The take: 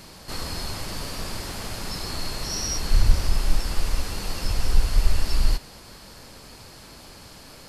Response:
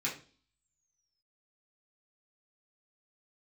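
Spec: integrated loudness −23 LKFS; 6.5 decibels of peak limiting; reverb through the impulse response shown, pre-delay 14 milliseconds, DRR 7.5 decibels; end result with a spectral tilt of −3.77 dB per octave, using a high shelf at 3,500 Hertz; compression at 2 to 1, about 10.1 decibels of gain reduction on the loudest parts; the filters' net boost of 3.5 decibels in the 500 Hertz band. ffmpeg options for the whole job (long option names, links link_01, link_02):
-filter_complex "[0:a]equalizer=frequency=500:width_type=o:gain=4.5,highshelf=frequency=3500:gain=-4,acompressor=threshold=-30dB:ratio=2,alimiter=limit=-22dB:level=0:latency=1,asplit=2[link_01][link_02];[1:a]atrim=start_sample=2205,adelay=14[link_03];[link_02][link_03]afir=irnorm=-1:irlink=0,volume=-12.5dB[link_04];[link_01][link_04]amix=inputs=2:normalize=0,volume=13dB"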